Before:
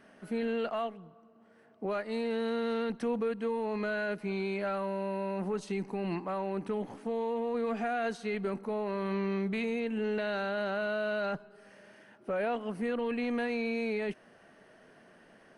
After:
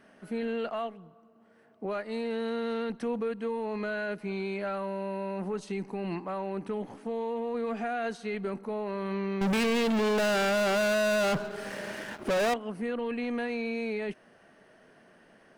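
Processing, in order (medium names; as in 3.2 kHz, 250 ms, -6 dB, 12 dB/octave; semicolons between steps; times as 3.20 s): 9.41–12.54 s: waveshaping leveller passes 5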